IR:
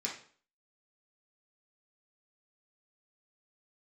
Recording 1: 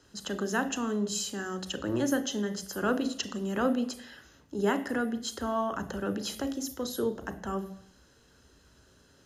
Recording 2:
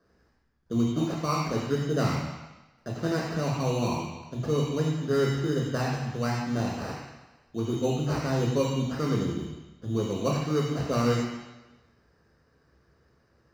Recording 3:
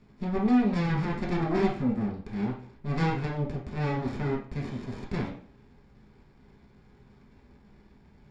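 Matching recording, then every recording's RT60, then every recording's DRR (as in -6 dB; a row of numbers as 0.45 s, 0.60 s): 3; 0.70 s, 1.1 s, 0.45 s; 9.5 dB, -2.5 dB, -4.0 dB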